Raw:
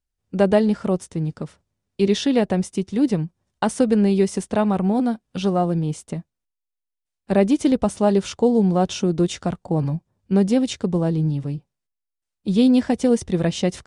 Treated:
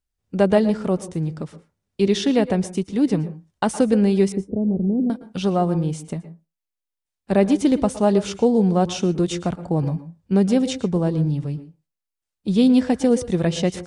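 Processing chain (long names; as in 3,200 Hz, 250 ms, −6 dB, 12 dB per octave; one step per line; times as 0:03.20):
0:04.32–0:05.10: inverse Chebyshev low-pass filter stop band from 1,500 Hz, stop band 60 dB
convolution reverb RT60 0.25 s, pre-delay 107 ms, DRR 13.5 dB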